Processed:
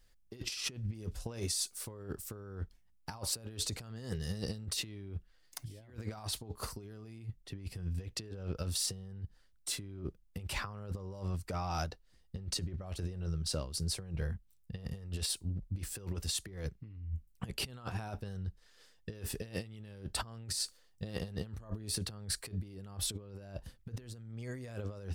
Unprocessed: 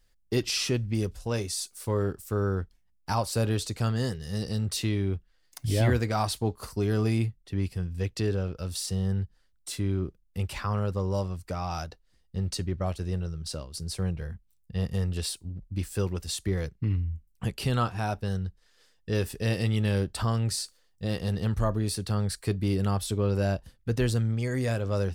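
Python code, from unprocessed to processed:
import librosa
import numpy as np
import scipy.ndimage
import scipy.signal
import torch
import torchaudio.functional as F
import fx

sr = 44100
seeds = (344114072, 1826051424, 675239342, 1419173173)

y = fx.over_compress(x, sr, threshold_db=-33.0, ratio=-0.5)
y = F.gain(torch.from_numpy(y), -5.5).numpy()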